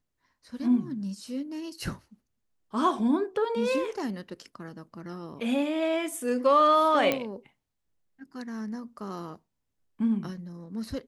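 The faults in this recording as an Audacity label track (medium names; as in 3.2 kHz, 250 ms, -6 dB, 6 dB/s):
7.120000	7.120000	pop -12 dBFS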